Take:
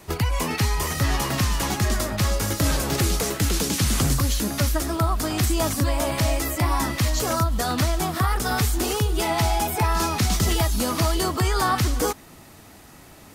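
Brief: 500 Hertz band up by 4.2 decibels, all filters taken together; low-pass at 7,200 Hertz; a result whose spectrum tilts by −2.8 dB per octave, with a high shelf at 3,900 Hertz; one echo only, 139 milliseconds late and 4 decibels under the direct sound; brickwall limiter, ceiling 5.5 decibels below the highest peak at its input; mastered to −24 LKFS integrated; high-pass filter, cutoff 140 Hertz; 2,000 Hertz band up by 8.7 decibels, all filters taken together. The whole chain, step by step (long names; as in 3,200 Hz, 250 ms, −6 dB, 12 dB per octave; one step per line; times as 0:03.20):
high-pass filter 140 Hz
low-pass filter 7,200 Hz
parametric band 500 Hz +5 dB
parametric band 2,000 Hz +9 dB
high-shelf EQ 3,900 Hz +6 dB
brickwall limiter −10.5 dBFS
single-tap delay 139 ms −4 dB
level −4 dB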